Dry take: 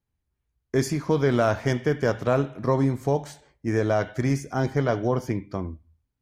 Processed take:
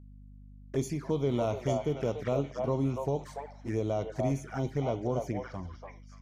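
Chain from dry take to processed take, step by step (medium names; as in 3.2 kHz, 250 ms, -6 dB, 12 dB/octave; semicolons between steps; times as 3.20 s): repeats whose band climbs or falls 288 ms, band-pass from 760 Hz, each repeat 1.4 oct, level 0 dB; touch-sensitive flanger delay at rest 11.5 ms, full sweep at -20.5 dBFS; hum 50 Hz, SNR 18 dB; trim -7 dB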